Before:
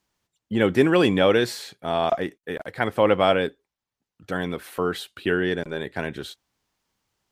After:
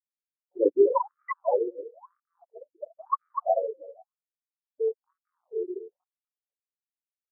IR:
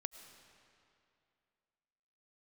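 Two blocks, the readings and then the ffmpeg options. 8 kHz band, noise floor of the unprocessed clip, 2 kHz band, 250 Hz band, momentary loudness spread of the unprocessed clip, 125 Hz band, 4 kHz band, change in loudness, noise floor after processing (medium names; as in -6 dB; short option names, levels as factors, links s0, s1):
under -35 dB, under -85 dBFS, under -20 dB, -13.0 dB, 14 LU, under -40 dB, under -40 dB, -4.5 dB, under -85 dBFS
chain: -filter_complex "[0:a]asplit=2[s0][s1];[s1]aecho=0:1:20|32|47:0.708|0.211|0.398[s2];[s0][s2]amix=inputs=2:normalize=0,acrusher=samples=22:mix=1:aa=0.000001:lfo=1:lforange=35.2:lforate=1.1,afftfilt=real='re*gte(hypot(re,im),0.631)':imag='im*gte(hypot(re,im),0.631)':win_size=1024:overlap=0.75,equalizer=f=1200:t=o:w=1.2:g=14.5,asplit=2[s3][s4];[s4]adelay=247,lowpass=f=3800:p=1,volume=0.531,asplit=2[s5][s6];[s6]adelay=247,lowpass=f=3800:p=1,volume=0.21,asplit=2[s7][s8];[s8]adelay=247,lowpass=f=3800:p=1,volume=0.21[s9];[s5][s7][s9]amix=inputs=3:normalize=0[s10];[s3][s10]amix=inputs=2:normalize=0,afftfilt=real='re*between(b*sr/1024,380*pow(1700/380,0.5+0.5*sin(2*PI*1*pts/sr))/1.41,380*pow(1700/380,0.5+0.5*sin(2*PI*1*pts/sr))*1.41)':imag='im*between(b*sr/1024,380*pow(1700/380,0.5+0.5*sin(2*PI*1*pts/sr))/1.41,380*pow(1700/380,0.5+0.5*sin(2*PI*1*pts/sr))*1.41)':win_size=1024:overlap=0.75,volume=0.631"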